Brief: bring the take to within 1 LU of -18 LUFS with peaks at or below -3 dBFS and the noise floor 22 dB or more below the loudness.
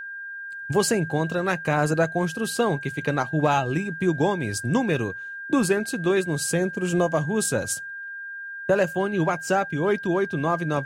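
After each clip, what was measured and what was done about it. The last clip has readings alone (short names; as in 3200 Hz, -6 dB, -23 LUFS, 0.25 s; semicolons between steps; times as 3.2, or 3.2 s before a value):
steady tone 1600 Hz; tone level -33 dBFS; loudness -24.5 LUFS; peak -7.5 dBFS; loudness target -18.0 LUFS
-> notch 1600 Hz, Q 30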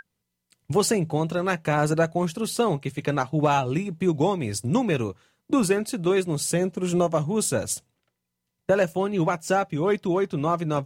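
steady tone none; loudness -24.5 LUFS; peak -8.0 dBFS; loudness target -18.0 LUFS
-> gain +6.5 dB; limiter -3 dBFS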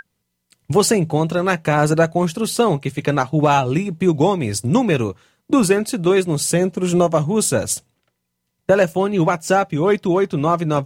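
loudness -18.0 LUFS; peak -3.0 dBFS; noise floor -75 dBFS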